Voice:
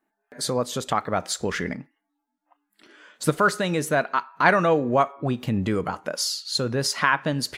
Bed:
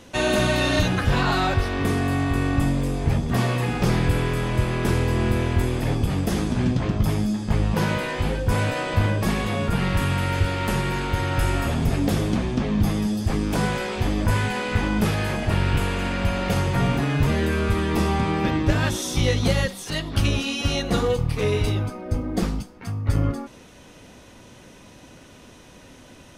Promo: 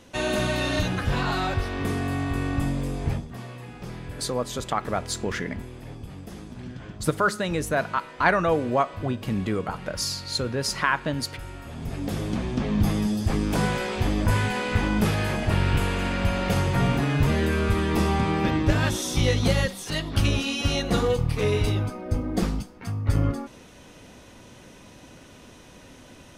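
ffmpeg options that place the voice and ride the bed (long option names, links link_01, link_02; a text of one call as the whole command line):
ffmpeg -i stem1.wav -i stem2.wav -filter_complex "[0:a]adelay=3800,volume=-2.5dB[link_01];[1:a]volume=11dB,afade=type=out:start_time=3.09:duration=0.21:silence=0.251189,afade=type=in:start_time=11.65:duration=1.2:silence=0.16788[link_02];[link_01][link_02]amix=inputs=2:normalize=0" out.wav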